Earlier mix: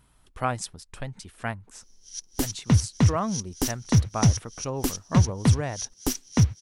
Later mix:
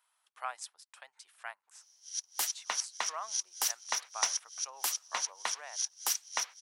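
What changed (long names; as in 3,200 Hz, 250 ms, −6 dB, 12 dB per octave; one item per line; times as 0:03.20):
speech −9.0 dB
master: add high-pass filter 790 Hz 24 dB per octave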